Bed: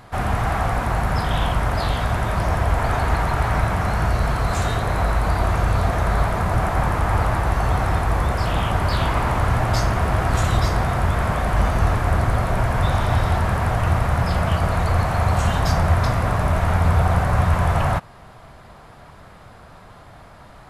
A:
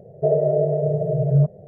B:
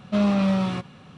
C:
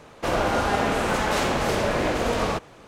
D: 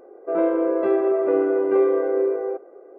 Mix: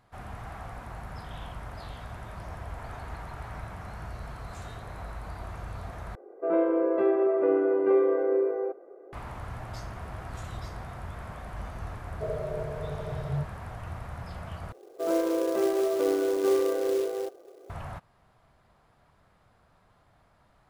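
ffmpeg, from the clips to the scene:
-filter_complex "[4:a]asplit=2[s0][s1];[0:a]volume=0.106[s2];[1:a]aeval=exprs='sgn(val(0))*max(abs(val(0))-0.00891,0)':c=same[s3];[s1]acrusher=bits=4:mode=log:mix=0:aa=0.000001[s4];[s2]asplit=3[s5][s6][s7];[s5]atrim=end=6.154[s8];[s0]atrim=end=2.98,asetpts=PTS-STARTPTS,volume=0.631[s9];[s6]atrim=start=9.126:end=14.724[s10];[s4]atrim=end=2.98,asetpts=PTS-STARTPTS,volume=0.501[s11];[s7]atrim=start=17.696[s12];[s3]atrim=end=1.67,asetpts=PTS-STARTPTS,volume=0.188,afade=t=in:d=0.004:c=hsin,afade=t=out:st=1.666:d=0.004:c=hsin,adelay=11980[s13];[s8][s9]acrossfade=d=0.004:c1=hsin:c2=hsin[s14];[s14][s10]acrossfade=d=0.004:c1=hsin:c2=hsin[s15];[s15][s11]acrossfade=d=0.004:c1=hsin:c2=hsin[s16];[s16][s12]acrossfade=d=0.004:c1=hsin:c2=hsin[s17];[s17][s13]amix=inputs=2:normalize=0"

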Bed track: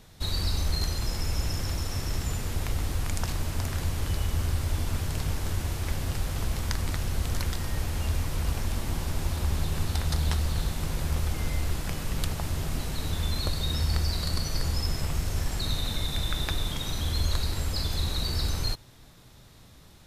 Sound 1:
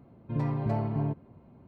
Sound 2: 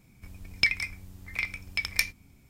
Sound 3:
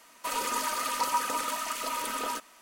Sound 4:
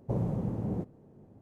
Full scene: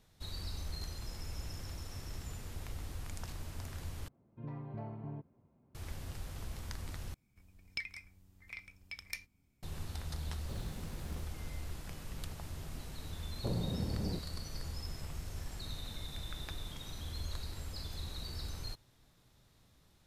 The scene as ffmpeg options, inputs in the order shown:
-filter_complex "[4:a]asplit=2[s0][s1];[0:a]volume=0.2[s2];[1:a]lowpass=3400[s3];[s0]acrusher=bits=6:mix=0:aa=0.000001[s4];[s2]asplit=3[s5][s6][s7];[s5]atrim=end=4.084[s8];[s3]atrim=end=1.67,asetpts=PTS-STARTPTS,volume=0.188[s9];[s6]atrim=start=5.746:end=7.144[s10];[2:a]atrim=end=2.49,asetpts=PTS-STARTPTS,volume=0.15[s11];[s7]atrim=start=9.626[s12];[s4]atrim=end=1.41,asetpts=PTS-STARTPTS,volume=0.141,afade=t=in:d=0.004:c=hsin,afade=t=out:st=1.406:d=0.004:c=hsin,adelay=10400[s13];[s1]atrim=end=1.41,asetpts=PTS-STARTPTS,volume=0.531,afade=t=in:d=0.004:c=hsin,afade=t=out:st=1.406:d=0.004:c=hsin,adelay=13350[s14];[s8][s9]acrossfade=d=0.004:c1=hsin:c2=hsin[s15];[s15][s10]acrossfade=d=0.004:c1=hsin:c2=hsin[s16];[s16][s11]acrossfade=d=0.004:c1=hsin:c2=hsin[s17];[s17][s12]acrossfade=d=0.004:c1=hsin:c2=hsin[s18];[s18][s13][s14]amix=inputs=3:normalize=0"

